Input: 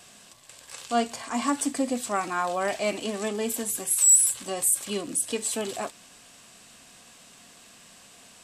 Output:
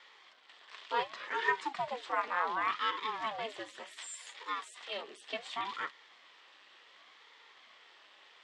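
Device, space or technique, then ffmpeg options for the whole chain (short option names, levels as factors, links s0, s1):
voice changer toy: -filter_complex "[0:a]aeval=exprs='val(0)*sin(2*PI*400*n/s+400*0.75/0.68*sin(2*PI*0.68*n/s))':c=same,highpass=460,equalizer=f=1100:t=q:w=4:g=7,equalizer=f=1900:t=q:w=4:g=9,equalizer=f=3300:t=q:w=4:g=6,lowpass=f=4400:w=0.5412,lowpass=f=4400:w=1.3066,asettb=1/sr,asplit=3[s0][s1][s2];[s0]atrim=end=3.924[s3];[s1]atrim=start=3.92:end=5.32,asetpts=PTS-STARTPTS,afade=t=in:d=0.004:c=qsin,afade=t=out:st=1.396:d=0.004:c=qsin,highpass=f=240:w=0.5412,highpass=f=240:w=1.3066[s4];[s2]atrim=start=5.316[s5];[s3][s4]acrossfade=d=0.004:c1=hsin:c2=qsin[s6];[s6][s5]acrossfade=d=0.004:c1=qsin:c2=hsin,volume=0.562"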